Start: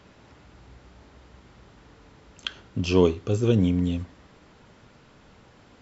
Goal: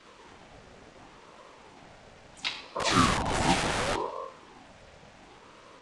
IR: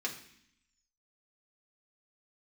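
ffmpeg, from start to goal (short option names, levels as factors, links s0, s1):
-filter_complex "[1:a]atrim=start_sample=2205,afade=t=out:st=0.41:d=0.01,atrim=end_sample=18522[s0];[0:a][s0]afir=irnorm=-1:irlink=0,acrossover=split=460|630[s1][s2][s3];[s1]aeval=exprs='(mod(15.8*val(0)+1,2)-1)/15.8':c=same[s4];[s4][s2][s3]amix=inputs=3:normalize=0,asplit=3[s5][s6][s7];[s6]asetrate=52444,aresample=44100,atempo=0.840896,volume=0.708[s8];[s7]asetrate=58866,aresample=44100,atempo=0.749154,volume=0.562[s9];[s5][s8][s9]amix=inputs=3:normalize=0,aresample=22050,aresample=44100,aeval=exprs='val(0)*sin(2*PI*550*n/s+550*0.45/0.71*sin(2*PI*0.71*n/s))':c=same"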